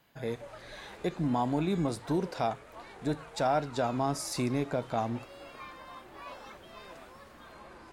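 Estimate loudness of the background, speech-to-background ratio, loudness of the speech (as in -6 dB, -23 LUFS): -48.0 LUFS, 15.5 dB, -32.5 LUFS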